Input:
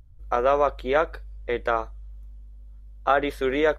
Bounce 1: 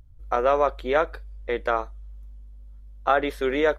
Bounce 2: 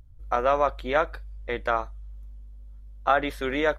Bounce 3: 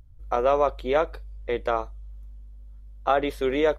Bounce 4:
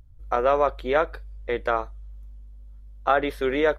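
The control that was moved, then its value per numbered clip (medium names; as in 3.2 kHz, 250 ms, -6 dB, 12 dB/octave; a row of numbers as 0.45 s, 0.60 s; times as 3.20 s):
dynamic bell, frequency: 110 Hz, 420 Hz, 1.6 kHz, 7.2 kHz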